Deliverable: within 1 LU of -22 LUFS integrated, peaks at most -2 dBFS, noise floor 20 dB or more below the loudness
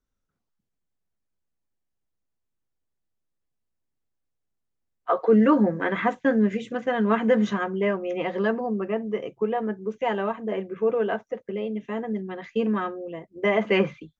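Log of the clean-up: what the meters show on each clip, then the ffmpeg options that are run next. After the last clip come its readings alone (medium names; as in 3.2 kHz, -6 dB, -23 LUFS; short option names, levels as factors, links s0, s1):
loudness -25.0 LUFS; peak level -8.5 dBFS; loudness target -22.0 LUFS
-> -af "volume=1.41"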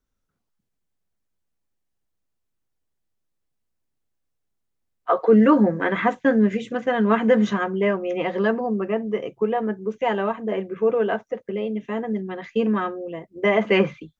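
loudness -22.0 LUFS; peak level -5.5 dBFS; noise floor -77 dBFS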